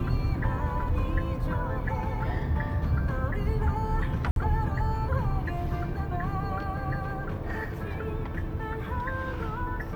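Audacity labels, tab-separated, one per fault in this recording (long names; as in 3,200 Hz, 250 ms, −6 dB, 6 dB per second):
4.310000	4.360000	drop-out 52 ms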